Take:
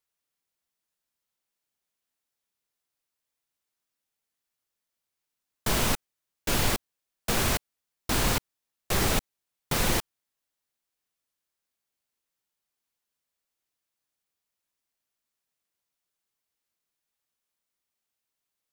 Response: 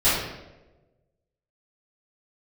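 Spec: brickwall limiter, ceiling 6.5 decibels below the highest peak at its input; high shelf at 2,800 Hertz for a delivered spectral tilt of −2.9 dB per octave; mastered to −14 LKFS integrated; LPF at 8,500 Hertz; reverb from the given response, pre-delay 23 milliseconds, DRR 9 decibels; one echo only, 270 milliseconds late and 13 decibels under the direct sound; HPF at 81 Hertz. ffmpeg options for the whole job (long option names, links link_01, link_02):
-filter_complex "[0:a]highpass=81,lowpass=8500,highshelf=frequency=2800:gain=9,alimiter=limit=-17dB:level=0:latency=1,aecho=1:1:270:0.224,asplit=2[link_01][link_02];[1:a]atrim=start_sample=2205,adelay=23[link_03];[link_02][link_03]afir=irnorm=-1:irlink=0,volume=-26.5dB[link_04];[link_01][link_04]amix=inputs=2:normalize=0,volume=14.5dB"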